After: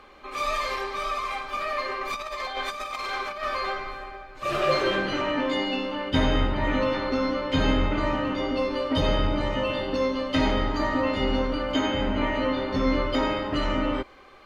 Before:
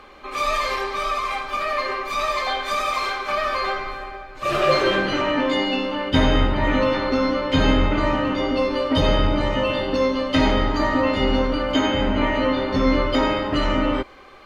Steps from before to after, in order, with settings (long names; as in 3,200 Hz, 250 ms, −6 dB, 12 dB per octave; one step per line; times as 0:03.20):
0:02.01–0:03.43: compressor whose output falls as the input rises −26 dBFS, ratio −0.5
level −5 dB